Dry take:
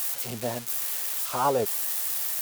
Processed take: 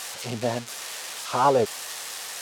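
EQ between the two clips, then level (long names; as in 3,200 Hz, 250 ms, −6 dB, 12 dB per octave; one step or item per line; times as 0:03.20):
low-pass filter 6,300 Hz 12 dB per octave
+4.5 dB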